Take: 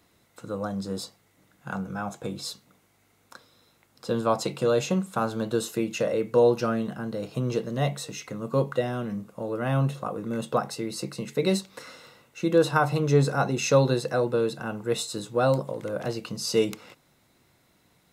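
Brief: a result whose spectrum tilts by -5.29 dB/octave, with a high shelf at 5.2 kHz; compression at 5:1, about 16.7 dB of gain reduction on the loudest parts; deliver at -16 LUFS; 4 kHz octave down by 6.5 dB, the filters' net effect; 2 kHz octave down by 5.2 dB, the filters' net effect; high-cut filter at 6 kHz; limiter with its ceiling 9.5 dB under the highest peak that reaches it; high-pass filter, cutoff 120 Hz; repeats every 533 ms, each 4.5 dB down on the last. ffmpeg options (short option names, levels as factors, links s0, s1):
-af "highpass=120,lowpass=6000,equalizer=f=2000:t=o:g=-7,equalizer=f=4000:t=o:g=-8.5,highshelf=f=5200:g=7,acompressor=threshold=0.0178:ratio=5,alimiter=level_in=2.11:limit=0.0631:level=0:latency=1,volume=0.473,aecho=1:1:533|1066|1599|2132|2665|3198|3731|4264|4797:0.596|0.357|0.214|0.129|0.0772|0.0463|0.0278|0.0167|0.01,volume=15"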